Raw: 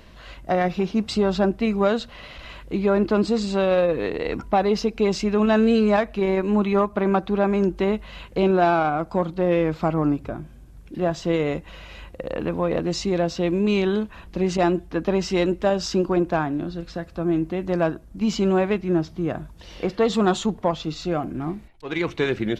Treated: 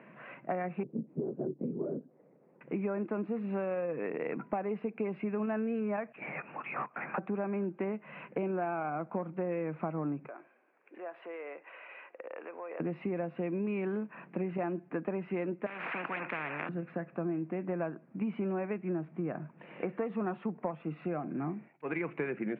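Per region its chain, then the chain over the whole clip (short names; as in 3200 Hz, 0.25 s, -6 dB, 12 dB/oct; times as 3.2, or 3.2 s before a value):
0.83–2.61 Butterworth band-pass 280 Hz, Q 1.2 + low shelf 240 Hz -8.5 dB + LPC vocoder at 8 kHz whisper
6.12–7.18 HPF 1400 Hz + LPC vocoder at 8 kHz whisper
10.26–12.8 low shelf 480 Hz -9.5 dB + compressor 4:1, threshold -35 dBFS + HPF 370 Hz 24 dB/oct
15.66–16.69 weighting filter A + spectral compressor 10:1
whole clip: Chebyshev band-pass 140–2500 Hz, order 5; compressor 6:1, threshold -29 dBFS; gain -2.5 dB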